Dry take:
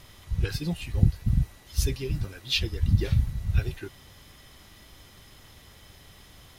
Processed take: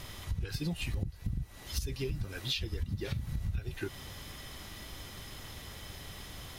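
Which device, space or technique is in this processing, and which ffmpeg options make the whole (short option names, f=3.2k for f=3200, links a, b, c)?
serial compression, peaks first: -filter_complex "[0:a]asettb=1/sr,asplit=3[a][b][c];[a]atrim=end=2.844[d];[b]atrim=start=2.84:end=3.32,asetpts=PTS-STARTPTS,afade=t=in:d=0.004:c=qsin,afade=t=out:st=0.476:d=0.004:c=qsin,highpass=f=140:p=1[e];[c]atrim=start=3.316[f];[d][e]acrossfade=d=0.004:c1=hsin:c2=qsin[g];[g][f]acrossfade=d=0.004:c1=qsin:c2=hsin,acompressor=threshold=-31dB:ratio=5,acompressor=threshold=-38dB:ratio=3,volume=5.5dB"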